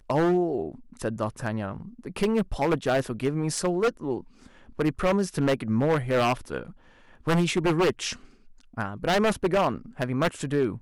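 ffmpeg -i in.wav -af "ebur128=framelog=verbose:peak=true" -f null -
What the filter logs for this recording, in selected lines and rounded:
Integrated loudness:
  I:         -26.4 LUFS
  Threshold: -37.0 LUFS
Loudness range:
  LRA:         2.0 LU
  Threshold: -47.0 LUFS
  LRA low:   -28.0 LUFS
  LRA high:  -26.0 LUFS
True peak:
  Peak:      -16.1 dBFS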